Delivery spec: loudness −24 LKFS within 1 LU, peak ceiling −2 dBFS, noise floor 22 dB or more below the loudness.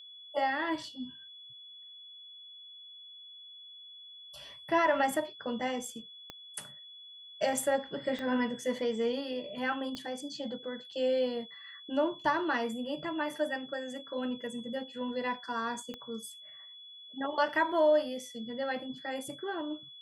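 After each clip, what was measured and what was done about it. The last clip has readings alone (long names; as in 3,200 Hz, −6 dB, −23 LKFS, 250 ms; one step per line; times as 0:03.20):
number of clicks 4; interfering tone 3,400 Hz; level of the tone −48 dBFS; integrated loudness −33.0 LKFS; sample peak −16.5 dBFS; target loudness −24.0 LKFS
→ click removal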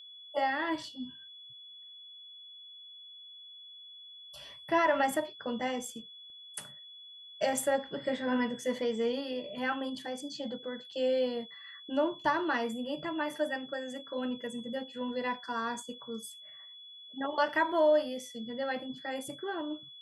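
number of clicks 0; interfering tone 3,400 Hz; level of the tone −48 dBFS
→ notch filter 3,400 Hz, Q 30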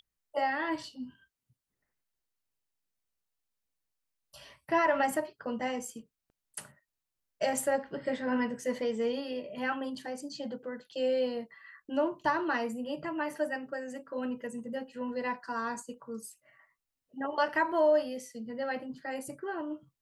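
interfering tone none found; integrated loudness −33.0 LKFS; sample peak −16.5 dBFS; target loudness −24.0 LKFS
→ level +9 dB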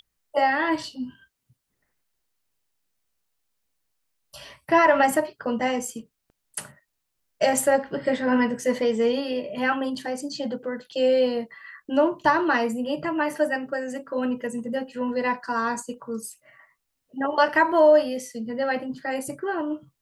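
integrated loudness −24.0 LKFS; sample peak −7.5 dBFS; background noise floor −78 dBFS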